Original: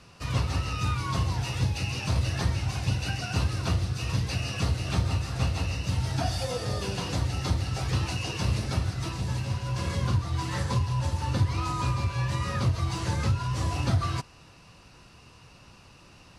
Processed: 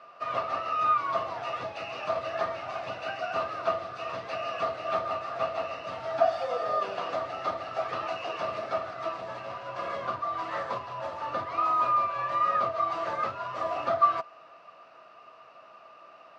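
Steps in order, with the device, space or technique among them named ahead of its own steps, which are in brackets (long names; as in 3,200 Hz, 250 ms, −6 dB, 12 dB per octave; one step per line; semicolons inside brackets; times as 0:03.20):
tin-can telephone (band-pass filter 500–2,300 Hz; hollow resonant body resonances 650/1,200 Hz, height 18 dB, ringing for 55 ms)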